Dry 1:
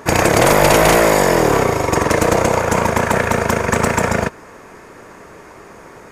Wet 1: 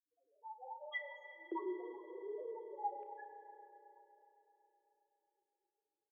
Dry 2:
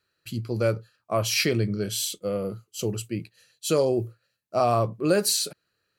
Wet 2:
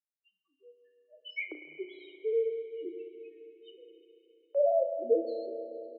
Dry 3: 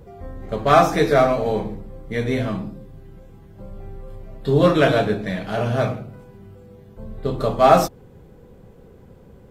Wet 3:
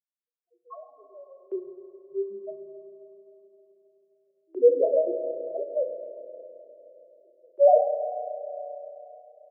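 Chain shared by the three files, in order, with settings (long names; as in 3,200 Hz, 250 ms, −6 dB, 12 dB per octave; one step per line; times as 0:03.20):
noise reduction from a noise print of the clip's start 22 dB
noise gate −51 dBFS, range −20 dB
low-pass that shuts in the quiet parts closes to 1,000 Hz, open at −21.5 dBFS
pitch vibrato 1.3 Hz 97 cents
spectral peaks only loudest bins 1
auto-filter high-pass square 0.33 Hz 520–2,300 Hz
double-tracking delay 33 ms −12 dB
spring reverb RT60 3.7 s, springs 33/52 ms, chirp 60 ms, DRR 7 dB
single-sideband voice off tune −60 Hz 420–3,200 Hz
level −2 dB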